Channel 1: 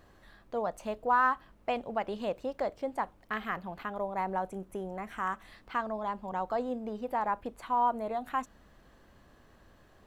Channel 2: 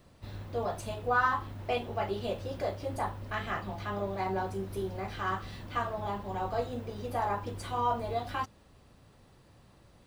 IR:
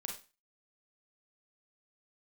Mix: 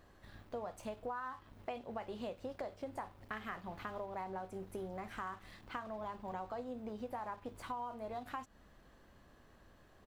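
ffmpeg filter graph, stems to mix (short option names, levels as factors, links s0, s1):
-filter_complex "[0:a]volume=0.668[s0];[1:a]aeval=exprs='sgn(val(0))*max(abs(val(0))-0.00562,0)':c=same,volume=-1,adelay=2.6,volume=0.299[s1];[s0][s1]amix=inputs=2:normalize=0,acompressor=threshold=0.0112:ratio=10"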